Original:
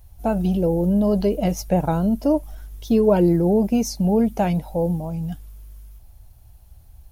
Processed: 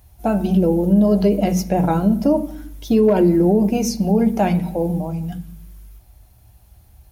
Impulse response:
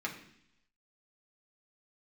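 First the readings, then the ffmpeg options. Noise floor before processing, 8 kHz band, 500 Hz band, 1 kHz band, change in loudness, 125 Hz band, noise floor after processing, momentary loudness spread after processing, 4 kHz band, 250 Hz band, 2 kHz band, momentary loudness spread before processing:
-48 dBFS, +3.0 dB, +2.0 dB, +3.0 dB, +3.0 dB, +2.5 dB, -51 dBFS, 11 LU, +3.0 dB, +3.5 dB, +4.0 dB, 11 LU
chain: -filter_complex "[0:a]highpass=47,asoftclip=type=hard:threshold=0.376,asplit=2[s0][s1];[1:a]atrim=start_sample=2205[s2];[s1][s2]afir=irnorm=-1:irlink=0,volume=0.596[s3];[s0][s3]amix=inputs=2:normalize=0,alimiter=level_in=2:limit=0.891:release=50:level=0:latency=1,volume=0.501"

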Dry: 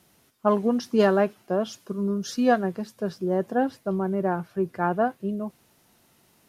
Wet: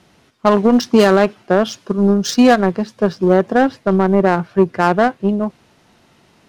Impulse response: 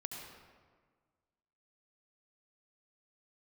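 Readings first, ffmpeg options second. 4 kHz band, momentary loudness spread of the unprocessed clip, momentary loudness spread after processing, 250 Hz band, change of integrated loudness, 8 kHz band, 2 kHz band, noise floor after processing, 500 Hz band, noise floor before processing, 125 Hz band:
+14.0 dB, 10 LU, 7 LU, +11.0 dB, +10.5 dB, no reading, +12.0 dB, -54 dBFS, +10.0 dB, -62 dBFS, +11.0 dB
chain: -af "adynamicsmooth=sensitivity=6:basefreq=3300,highshelf=f=3300:g=9,aeval=exprs='0.422*(cos(1*acos(clip(val(0)/0.422,-1,1)))-cos(1*PI/2))+0.0299*(cos(7*acos(clip(val(0)/0.422,-1,1)))-cos(7*PI/2))':c=same,alimiter=level_in=7.5:limit=0.891:release=50:level=0:latency=1,volume=0.891"

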